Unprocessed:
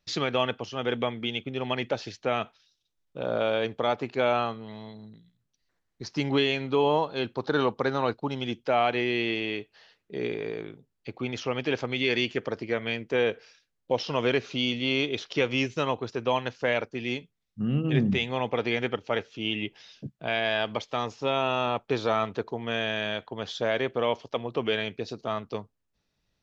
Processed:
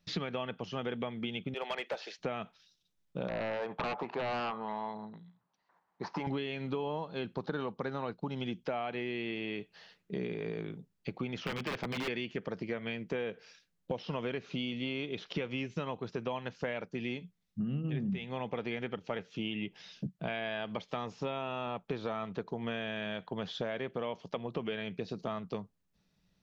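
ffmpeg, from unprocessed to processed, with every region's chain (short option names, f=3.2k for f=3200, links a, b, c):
-filter_complex "[0:a]asettb=1/sr,asplit=3[a][b][c];[a]atrim=end=1.544[d];[b]atrim=start=1.54:end=2.19,asetpts=PTS-STARTPTS,afade=t=in:d=0.004:c=qsin,afade=t=out:st=0.646:d=0.004:c=qsin,highpass=f=460:w=0.5412,highpass=f=460:w=1.3066,asoftclip=type=hard:threshold=-26dB[e];[c]atrim=start=2.186[f];[d][e]acrossfade=d=0.004:c1=hsin:c2=qsin[g];[g][f]acrossfade=d=0.004:c1=qsin:c2=hsin,asettb=1/sr,asplit=3[h][i][j];[h]atrim=end=3.284[k];[i]atrim=start=3.28:end=6.27,asetpts=PTS-STARTPTS,afade=t=in:d=0.004:c=qsin,afade=t=out:st=2.986:d=0.004:c=qsin,acompressor=threshold=-29dB:ratio=2.5:attack=3.2:release=140:knee=1:detection=peak,bandpass=f=930:t=q:w=3.7,aeval=exprs='0.0596*sin(PI/2*5.62*val(0)/0.0596)':c=same[l];[j]atrim=start=6.266[m];[k][l]acrossfade=d=0.004:c1=hsin:c2=qsin[n];[n][m]acrossfade=d=0.004:c1=qsin:c2=hsin,asettb=1/sr,asplit=3[o][p][q];[o]atrim=end=11.454[r];[p]atrim=start=11.45:end=12.08,asetpts=PTS-STARTPTS,afade=t=in:d=0.004:c=qsin,afade=t=out:st=0.626:d=0.004:c=qsin,highpass=70,aeval=exprs='(mod(12.6*val(0)+1,2)-1)/12.6':c=same[s];[q]atrim=start=12.076[t];[r][s]acrossfade=d=0.004:c1=hsin:c2=qsin[u];[u][t]acrossfade=d=0.004:c1=qsin:c2=hsin,acrossover=split=3900[v][w];[w]acompressor=threshold=-54dB:ratio=4:attack=1:release=60[x];[v][x]amix=inputs=2:normalize=0,equalizer=f=180:w=3.5:g=13,acompressor=threshold=-33dB:ratio=6"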